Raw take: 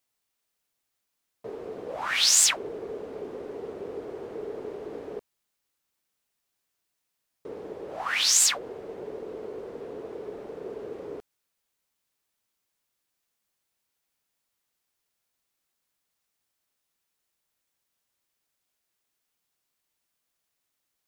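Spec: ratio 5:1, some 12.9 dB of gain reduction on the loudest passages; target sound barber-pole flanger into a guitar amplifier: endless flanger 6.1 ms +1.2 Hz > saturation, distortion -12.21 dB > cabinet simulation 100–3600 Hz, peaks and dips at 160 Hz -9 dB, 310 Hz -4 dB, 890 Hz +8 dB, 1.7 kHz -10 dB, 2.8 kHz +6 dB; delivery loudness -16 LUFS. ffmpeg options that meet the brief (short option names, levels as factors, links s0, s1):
-filter_complex "[0:a]acompressor=threshold=0.0282:ratio=5,asplit=2[s0][s1];[s1]adelay=6.1,afreqshift=1.2[s2];[s0][s2]amix=inputs=2:normalize=1,asoftclip=threshold=0.015,highpass=100,equalizer=f=160:t=q:w=4:g=-9,equalizer=f=310:t=q:w=4:g=-4,equalizer=f=890:t=q:w=4:g=8,equalizer=f=1700:t=q:w=4:g=-10,equalizer=f=2800:t=q:w=4:g=6,lowpass=f=3600:w=0.5412,lowpass=f=3600:w=1.3066,volume=25.1"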